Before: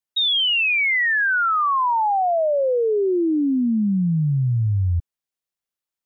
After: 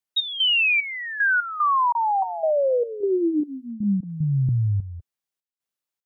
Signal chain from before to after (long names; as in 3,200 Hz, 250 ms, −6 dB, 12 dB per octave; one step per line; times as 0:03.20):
high-pass filter 87 Hz 12 dB per octave
gate pattern "x.xx..x.xxx.x" 75 BPM −12 dB
0:01.92–0:04.49: three-band delay without the direct sound lows, mids, highs 30/300 ms, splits 250/1,200 Hz